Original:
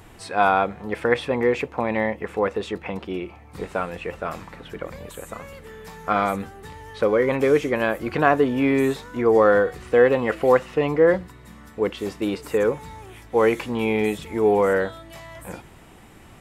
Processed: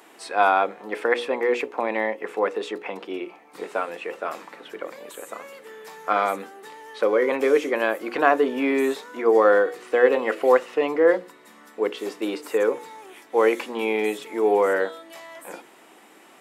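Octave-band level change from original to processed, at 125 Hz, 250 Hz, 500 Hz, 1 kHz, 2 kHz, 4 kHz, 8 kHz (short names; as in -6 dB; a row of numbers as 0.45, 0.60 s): under -15 dB, -4.0 dB, -1.0 dB, 0.0 dB, 0.0 dB, 0.0 dB, n/a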